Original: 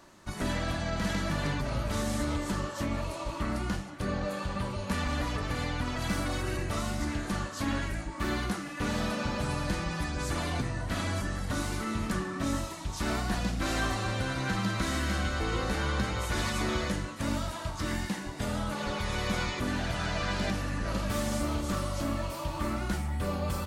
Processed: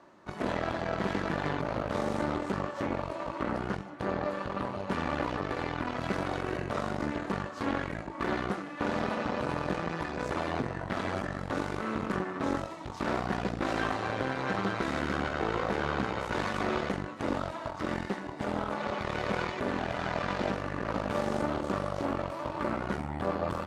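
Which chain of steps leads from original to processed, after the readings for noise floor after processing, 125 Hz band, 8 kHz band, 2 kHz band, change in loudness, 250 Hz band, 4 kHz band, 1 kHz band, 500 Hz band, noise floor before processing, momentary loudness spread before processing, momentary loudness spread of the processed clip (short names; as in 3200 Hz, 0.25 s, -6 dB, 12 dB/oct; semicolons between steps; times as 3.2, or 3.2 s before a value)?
-41 dBFS, -5.0 dB, -12.0 dB, -0.5 dB, -0.5 dB, -0.5 dB, -6.0 dB, +2.5 dB, +3.5 dB, -40 dBFS, 4 LU, 4 LU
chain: added harmonics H 4 -9 dB, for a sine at -19 dBFS; band-pass 580 Hz, Q 0.5; gain +1.5 dB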